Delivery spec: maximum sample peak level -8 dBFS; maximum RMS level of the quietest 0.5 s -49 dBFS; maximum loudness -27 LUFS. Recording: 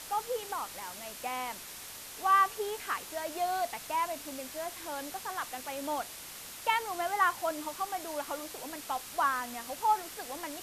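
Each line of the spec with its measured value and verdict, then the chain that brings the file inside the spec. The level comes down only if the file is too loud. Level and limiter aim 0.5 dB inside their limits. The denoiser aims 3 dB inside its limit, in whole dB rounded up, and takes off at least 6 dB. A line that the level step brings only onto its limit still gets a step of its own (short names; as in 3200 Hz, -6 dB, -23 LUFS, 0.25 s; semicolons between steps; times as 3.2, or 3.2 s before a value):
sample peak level -14.5 dBFS: OK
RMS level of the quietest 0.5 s -46 dBFS: fail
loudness -33.5 LUFS: OK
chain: denoiser 6 dB, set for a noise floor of -46 dBFS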